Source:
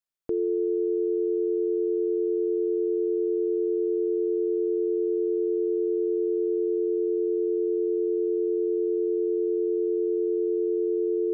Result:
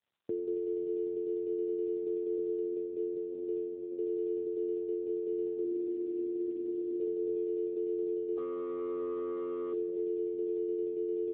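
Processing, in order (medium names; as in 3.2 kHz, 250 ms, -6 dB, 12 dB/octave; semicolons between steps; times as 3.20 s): 5.64–7.00 s: comb 3.3 ms, depth 67%; peak limiter -24.5 dBFS, peak gain reduction 5 dB; 8.37–9.73 s: hard clipper -31 dBFS, distortion -18 dB; on a send: feedback delay 184 ms, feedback 21%, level -22.5 dB; on the sum: trim -1.5 dB; AMR-NB 7.95 kbps 8 kHz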